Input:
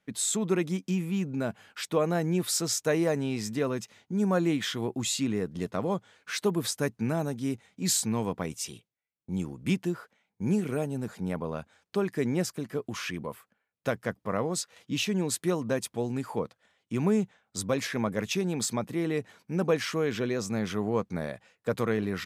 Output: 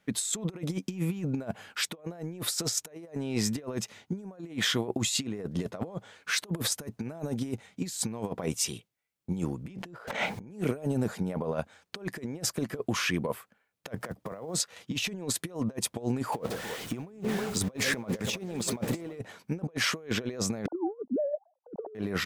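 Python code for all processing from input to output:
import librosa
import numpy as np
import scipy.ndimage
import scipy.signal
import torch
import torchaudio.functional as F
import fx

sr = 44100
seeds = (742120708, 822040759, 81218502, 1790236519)

y = fx.chain(x, sr, fx.high_shelf(hz=7200.0, db=-11.0),
    fx.env_flatten(amount_pct=100), at=(9.67, 10.51))
y = fx.chain(y, sr, fx.block_float(bits=7),
    fx.band_squash(depth_pct=40), at=(13.96, 14.6))
y = fx.chain(y, sr, fx.zero_step(step_db=-40.5),
    fx.echo_split(split_hz=440.0, low_ms=142, high_ms=319, feedback_pct=52, wet_db=-14.0), at=(16.32, 19.19))
y = fx.chain(y, sr, fx.sine_speech(),
    fx.steep_lowpass(hz=900.0, slope=48), at=(20.66, 21.95))
y = fx.dynamic_eq(y, sr, hz=600.0, q=1.4, threshold_db=-43.0, ratio=4.0, max_db=7)
y = fx.over_compress(y, sr, threshold_db=-32.0, ratio=-0.5)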